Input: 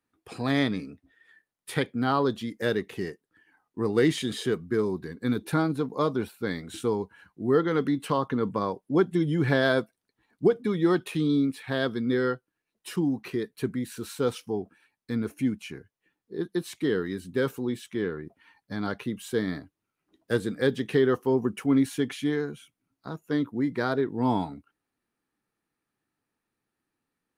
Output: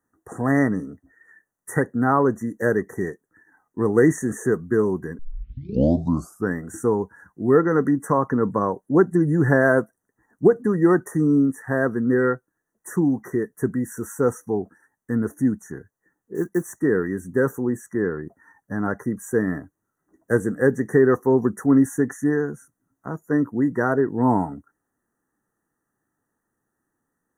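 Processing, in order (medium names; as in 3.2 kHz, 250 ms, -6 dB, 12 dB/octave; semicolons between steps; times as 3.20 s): 16.35–16.81 s: block-companded coder 5-bit; brick-wall FIR band-stop 2–5.7 kHz; 5.19 s: tape start 1.35 s; trim +6 dB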